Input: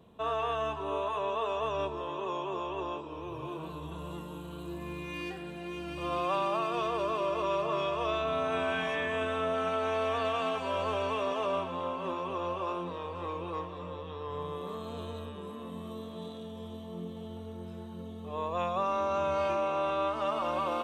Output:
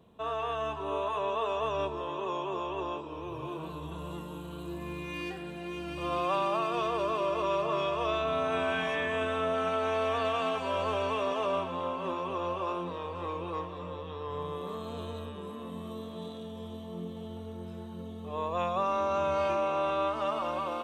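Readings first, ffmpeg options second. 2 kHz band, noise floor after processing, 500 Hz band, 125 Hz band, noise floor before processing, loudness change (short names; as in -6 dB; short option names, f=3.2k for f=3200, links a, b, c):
+1.0 dB, -42 dBFS, +1.0 dB, +1.0 dB, -43 dBFS, +1.0 dB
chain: -af "dynaudnorm=f=290:g=5:m=3dB,volume=-2dB"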